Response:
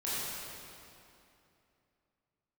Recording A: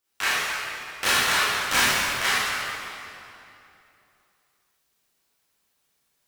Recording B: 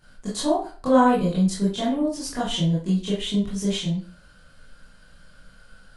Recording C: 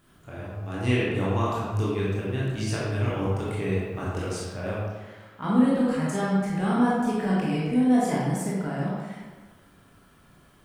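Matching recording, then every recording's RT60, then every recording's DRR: A; 2.8, 0.40, 1.5 s; -10.5, -9.0, -7.0 dB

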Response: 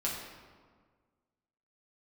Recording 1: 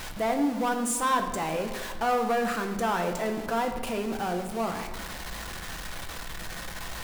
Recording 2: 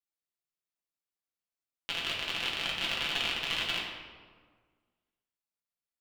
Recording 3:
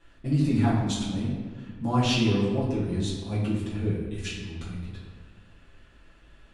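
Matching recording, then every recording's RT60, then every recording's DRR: 2; 1.6, 1.6, 1.6 s; 4.0, -5.5, -9.5 dB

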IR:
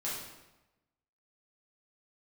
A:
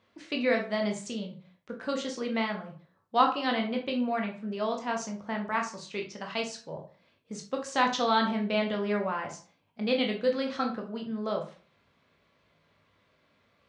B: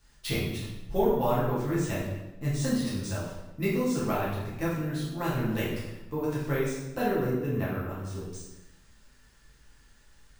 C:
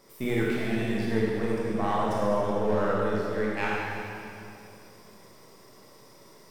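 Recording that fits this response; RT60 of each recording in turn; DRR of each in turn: B; 0.40, 1.0, 2.7 s; 1.5, -8.5, -5.5 dB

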